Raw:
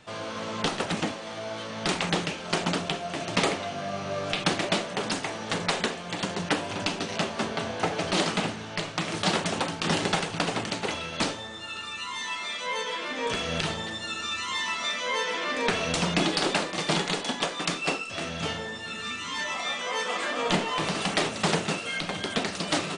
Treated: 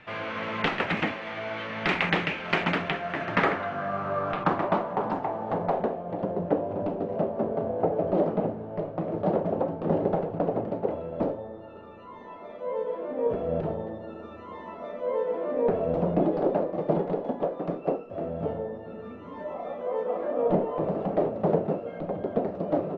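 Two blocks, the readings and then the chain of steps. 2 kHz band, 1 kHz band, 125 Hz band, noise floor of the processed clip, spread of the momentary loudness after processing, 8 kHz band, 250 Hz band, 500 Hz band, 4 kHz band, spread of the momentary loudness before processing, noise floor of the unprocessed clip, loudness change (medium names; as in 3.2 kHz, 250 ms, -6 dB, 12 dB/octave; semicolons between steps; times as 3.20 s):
-4.0 dB, -0.5 dB, +0.5 dB, -43 dBFS, 12 LU, under -25 dB, +1.5 dB, +5.5 dB, under -10 dB, 7 LU, -38 dBFS, 0.0 dB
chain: low-pass sweep 2.2 kHz -> 570 Hz, 2.63–6.36 s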